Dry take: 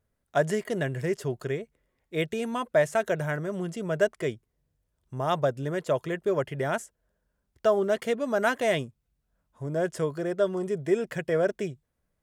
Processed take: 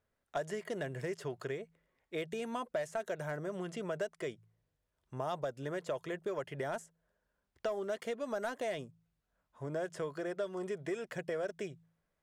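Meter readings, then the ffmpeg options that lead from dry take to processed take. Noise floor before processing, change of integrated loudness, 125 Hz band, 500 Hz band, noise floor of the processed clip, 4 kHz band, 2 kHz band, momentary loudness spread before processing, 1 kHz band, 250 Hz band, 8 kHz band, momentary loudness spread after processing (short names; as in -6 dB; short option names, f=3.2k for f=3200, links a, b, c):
-79 dBFS, -11.0 dB, -12.5 dB, -11.0 dB, -84 dBFS, -10.0 dB, -11.0 dB, 9 LU, -10.0 dB, -11.0 dB, -9.5 dB, 6 LU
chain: -filter_complex "[0:a]asplit=2[a][b];[b]highpass=f=720:p=1,volume=9dB,asoftclip=type=tanh:threshold=-11dB[c];[a][c]amix=inputs=2:normalize=0,lowpass=f=3k:p=1,volume=-6dB,bandreject=f=54.91:t=h:w=4,bandreject=f=109.82:t=h:w=4,bandreject=f=164.73:t=h:w=4,acrossover=split=910|4400[d][e][f];[d]acompressor=threshold=-33dB:ratio=4[g];[e]acompressor=threshold=-44dB:ratio=4[h];[f]acompressor=threshold=-49dB:ratio=4[i];[g][h][i]amix=inputs=3:normalize=0,volume=-3.5dB"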